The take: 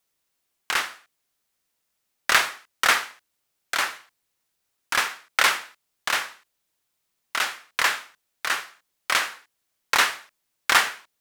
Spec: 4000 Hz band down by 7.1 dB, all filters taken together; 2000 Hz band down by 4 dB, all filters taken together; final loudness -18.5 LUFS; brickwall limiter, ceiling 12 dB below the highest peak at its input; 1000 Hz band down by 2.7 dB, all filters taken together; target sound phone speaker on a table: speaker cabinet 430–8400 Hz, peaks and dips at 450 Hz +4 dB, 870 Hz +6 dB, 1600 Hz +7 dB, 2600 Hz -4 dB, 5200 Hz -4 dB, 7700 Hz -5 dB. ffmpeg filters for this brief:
-af "equalizer=f=1k:t=o:g=-4.5,equalizer=f=2k:t=o:g=-8,equalizer=f=4k:t=o:g=-4,alimiter=limit=-18.5dB:level=0:latency=1,highpass=f=430:w=0.5412,highpass=f=430:w=1.3066,equalizer=f=450:t=q:w=4:g=4,equalizer=f=870:t=q:w=4:g=6,equalizer=f=1.6k:t=q:w=4:g=7,equalizer=f=2.6k:t=q:w=4:g=-4,equalizer=f=5.2k:t=q:w=4:g=-4,equalizer=f=7.7k:t=q:w=4:g=-5,lowpass=f=8.4k:w=0.5412,lowpass=f=8.4k:w=1.3066,volume=14.5dB"

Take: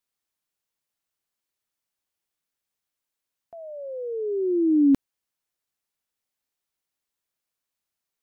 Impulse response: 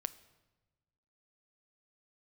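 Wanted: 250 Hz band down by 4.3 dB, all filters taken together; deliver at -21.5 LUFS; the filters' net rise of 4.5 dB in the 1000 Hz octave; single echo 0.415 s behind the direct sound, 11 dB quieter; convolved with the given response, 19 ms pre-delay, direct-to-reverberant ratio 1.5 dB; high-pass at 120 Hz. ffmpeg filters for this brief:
-filter_complex "[0:a]highpass=120,equalizer=f=250:t=o:g=-6,equalizer=f=1k:t=o:g=7.5,aecho=1:1:415:0.282,asplit=2[a][b];[1:a]atrim=start_sample=2205,adelay=19[c];[b][c]afir=irnorm=-1:irlink=0,volume=-0.5dB[d];[a][d]amix=inputs=2:normalize=0,volume=4.5dB"

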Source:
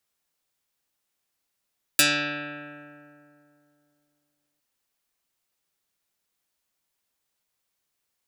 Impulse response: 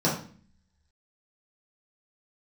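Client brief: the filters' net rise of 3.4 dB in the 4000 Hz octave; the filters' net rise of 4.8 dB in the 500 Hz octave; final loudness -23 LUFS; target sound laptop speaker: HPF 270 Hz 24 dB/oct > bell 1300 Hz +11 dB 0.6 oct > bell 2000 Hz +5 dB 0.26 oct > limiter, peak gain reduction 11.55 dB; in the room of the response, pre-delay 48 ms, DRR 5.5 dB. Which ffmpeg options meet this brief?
-filter_complex "[0:a]equalizer=f=500:t=o:g=5,equalizer=f=4k:t=o:g=3.5,asplit=2[a][b];[1:a]atrim=start_sample=2205,adelay=48[c];[b][c]afir=irnorm=-1:irlink=0,volume=-18.5dB[d];[a][d]amix=inputs=2:normalize=0,highpass=f=270:w=0.5412,highpass=f=270:w=1.3066,equalizer=f=1.3k:t=o:w=0.6:g=11,equalizer=f=2k:t=o:w=0.26:g=5,volume=3.5dB,alimiter=limit=-12dB:level=0:latency=1"

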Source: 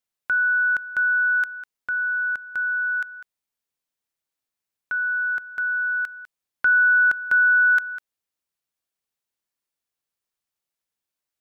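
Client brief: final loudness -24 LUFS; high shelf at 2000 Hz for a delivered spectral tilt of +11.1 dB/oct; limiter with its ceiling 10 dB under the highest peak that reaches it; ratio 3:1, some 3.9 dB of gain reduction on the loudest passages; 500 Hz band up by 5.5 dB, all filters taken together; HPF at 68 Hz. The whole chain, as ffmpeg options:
-af "highpass=68,equalizer=f=500:t=o:g=6.5,highshelf=f=2k:g=4,acompressor=threshold=-18dB:ratio=3,volume=0.5dB,alimiter=limit=-20dB:level=0:latency=1"

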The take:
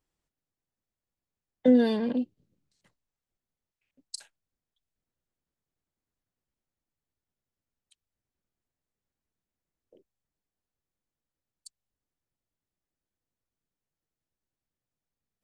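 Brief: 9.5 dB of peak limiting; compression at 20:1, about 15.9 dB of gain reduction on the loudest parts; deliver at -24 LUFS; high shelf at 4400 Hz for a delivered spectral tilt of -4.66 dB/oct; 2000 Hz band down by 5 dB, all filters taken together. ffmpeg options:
-af "equalizer=f=2k:t=o:g=-7.5,highshelf=f=4.4k:g=5.5,acompressor=threshold=-30dB:ratio=20,volume=16dB,alimiter=limit=-12dB:level=0:latency=1"

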